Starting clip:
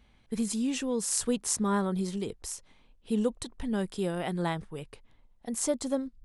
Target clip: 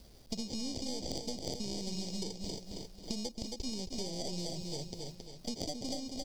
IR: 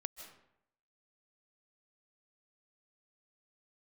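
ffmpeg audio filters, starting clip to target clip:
-filter_complex "[0:a]aresample=16000,acrusher=samples=12:mix=1:aa=0.000001,aresample=44100,acompressor=threshold=0.0282:ratio=6,aeval=exprs='0.119*(cos(1*acos(clip(val(0)/0.119,-1,1)))-cos(1*PI/2))+0.0188*(cos(6*acos(clip(val(0)/0.119,-1,1)))-cos(6*PI/2))':c=same,asuperstop=centerf=1400:order=4:qfactor=0.71,equalizer=f=4900:w=2.4:g=15,acrusher=bits=10:mix=0:aa=0.000001,asplit=2[s0][s1];[s1]aecho=0:1:271|542|813|1084:0.398|0.143|0.0516|0.0186[s2];[s0][s2]amix=inputs=2:normalize=0,acrossover=split=1000|5000[s3][s4][s5];[s3]acompressor=threshold=0.00794:ratio=4[s6];[s4]acompressor=threshold=0.00178:ratio=4[s7];[s5]acompressor=threshold=0.00355:ratio=4[s8];[s6][s7][s8]amix=inputs=3:normalize=0,volume=1.68"

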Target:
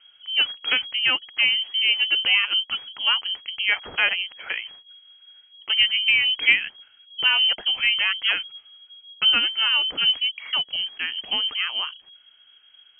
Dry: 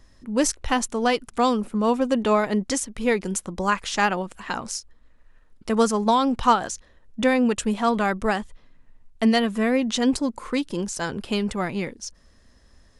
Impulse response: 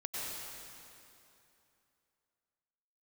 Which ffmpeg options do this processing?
-filter_complex "[0:a]asettb=1/sr,asplit=3[s0][s1][s2];[s0]atrim=end=2.644[s3];[s1]atrim=start=2.64:end=3.04,asetpts=PTS-STARTPTS,afade=t=in:d=0.004:c=qsin,afade=t=out:st=0.396:d=0.004:c=qsin,aeval=exprs='if(lt(val(0),0),0.708*val(0),val(0))':c=same[s4];[s2]atrim=start=3.036[s5];[s3][s4]acrossfade=d=0.004:c1=hsin:c2=qsin[s6];[s6][s5]acrossfade=d=0.004:c1=qsin:c2=hsin,lowpass=f=2800:t=q:w=0.5098,lowpass=f=2800:t=q:w=0.6013,lowpass=f=2800:t=q:w=0.9,lowpass=f=2800:t=q:w=2.563,afreqshift=-3300"

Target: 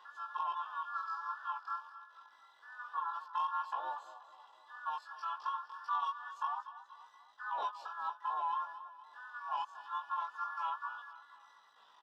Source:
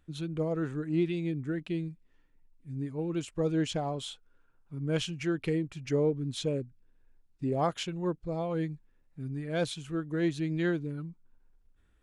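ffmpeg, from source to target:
-filter_complex "[0:a]afftfilt=real='real(if(between(b,1,1008),(2*floor((b-1)/48)+1)*48-b,b),0)':imag='imag(if(between(b,1,1008),(2*floor((b-1)/48)+1)*48-b,b),0)*if(between(b,1,1008),-1,1)':win_size=2048:overlap=0.75,acompressor=mode=upward:threshold=0.0178:ratio=2.5,aresample=16000,acrusher=bits=7:mix=0:aa=0.000001,aresample=44100,asplit=3[s0][s1][s2];[s0]bandpass=f=530:t=q:w=8,volume=1[s3];[s1]bandpass=f=1840:t=q:w=8,volume=0.501[s4];[s2]bandpass=f=2480:t=q:w=8,volume=0.355[s5];[s3][s4][s5]amix=inputs=3:normalize=0,lowshelf=f=66:g=-8,asetrate=85689,aresample=44100,atempo=0.514651,acrossover=split=190 2800:gain=0.224 1 0.1[s6][s7][s8];[s6][s7][s8]amix=inputs=3:normalize=0,asoftclip=type=tanh:threshold=0.0266,acompressor=threshold=0.00794:ratio=8,asplit=2[s9][s10];[s10]aecho=0:1:239|478|717|956|1195:0.2|0.106|0.056|0.0297|0.0157[s11];[s9][s11]amix=inputs=2:normalize=0,asplit=2[s12][s13];[s13]asetrate=37084,aresample=44100,atempo=1.18921,volume=0.447[s14];[s12][s14]amix=inputs=2:normalize=0,flanger=delay=16.5:depth=5.6:speed=0.27,volume=3.16"

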